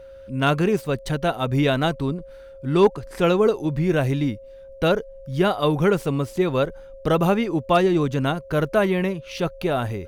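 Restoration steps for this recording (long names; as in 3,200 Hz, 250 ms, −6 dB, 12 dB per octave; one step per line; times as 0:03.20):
clipped peaks rebuilt −8 dBFS
notch filter 540 Hz, Q 30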